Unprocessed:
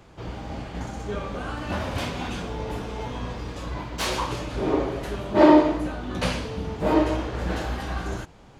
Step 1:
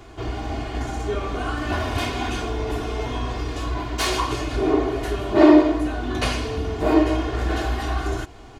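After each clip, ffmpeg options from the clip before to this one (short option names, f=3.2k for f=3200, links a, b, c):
-filter_complex "[0:a]aecho=1:1:2.8:0.72,asplit=2[a][b];[b]acompressor=threshold=-30dB:ratio=6,volume=2dB[c];[a][c]amix=inputs=2:normalize=0,volume=-1.5dB"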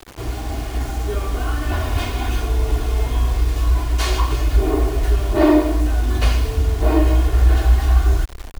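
-af "lowshelf=f=130:g=5.5,acrusher=bits=5:mix=0:aa=0.000001,asubboost=boost=5.5:cutoff=68,volume=-1dB"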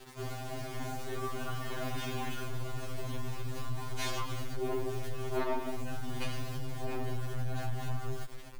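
-af "acompressor=threshold=-15dB:ratio=6,aeval=exprs='(tanh(7.08*val(0)+0.55)-tanh(0.55))/7.08':c=same,afftfilt=real='re*2.45*eq(mod(b,6),0)':imag='im*2.45*eq(mod(b,6),0)':win_size=2048:overlap=0.75,volume=-5.5dB"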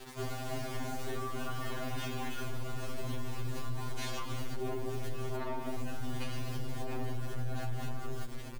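-filter_complex "[0:a]alimiter=level_in=6dB:limit=-24dB:level=0:latency=1:release=356,volume=-6dB,asplit=2[a][b];[b]adelay=12,volume=-13.5dB[c];[a][c]amix=inputs=2:normalize=0,asplit=2[d][e];[e]asplit=5[f][g][h][i][j];[f]adelay=173,afreqshift=-120,volume=-18dB[k];[g]adelay=346,afreqshift=-240,volume=-23.2dB[l];[h]adelay=519,afreqshift=-360,volume=-28.4dB[m];[i]adelay=692,afreqshift=-480,volume=-33.6dB[n];[j]adelay=865,afreqshift=-600,volume=-38.8dB[o];[k][l][m][n][o]amix=inputs=5:normalize=0[p];[d][p]amix=inputs=2:normalize=0,volume=3dB"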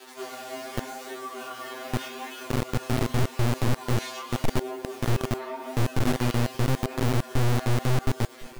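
-filter_complex "[0:a]flanger=delay=18.5:depth=7.6:speed=0.85,acrossover=split=260|1900[a][b][c];[a]acrusher=bits=6:dc=4:mix=0:aa=0.000001[d];[d][b][c]amix=inputs=3:normalize=0,volume=7dB"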